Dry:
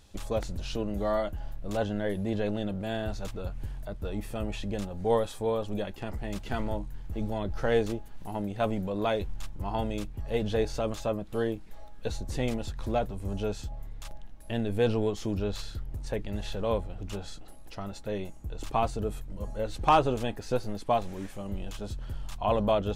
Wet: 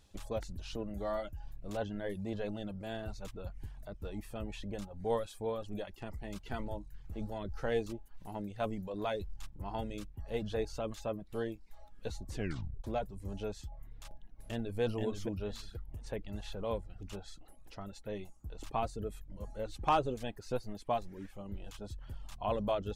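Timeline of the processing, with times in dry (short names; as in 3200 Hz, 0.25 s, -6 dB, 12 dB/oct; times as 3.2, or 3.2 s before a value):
12.34 tape stop 0.50 s
13.9–14.8 echo throw 0.48 s, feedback 25%, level -2.5 dB
21.05–21.65 bell 8400 Hz -7.5 dB 1.8 oct
whole clip: reverb removal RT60 0.55 s; gain -7 dB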